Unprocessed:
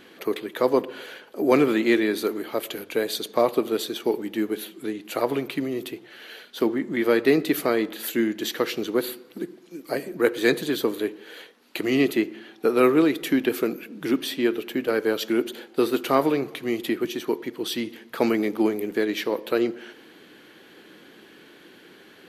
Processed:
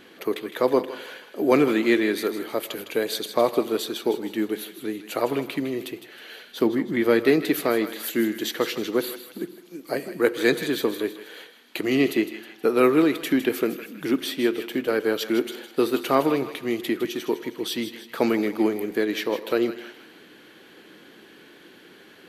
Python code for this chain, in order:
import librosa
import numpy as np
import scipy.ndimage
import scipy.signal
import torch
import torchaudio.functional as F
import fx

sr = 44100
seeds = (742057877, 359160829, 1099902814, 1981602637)

y = fx.low_shelf(x, sr, hz=140.0, db=9.0, at=(6.48, 7.24))
y = fx.echo_thinned(y, sr, ms=158, feedback_pct=49, hz=1000.0, wet_db=-10.0)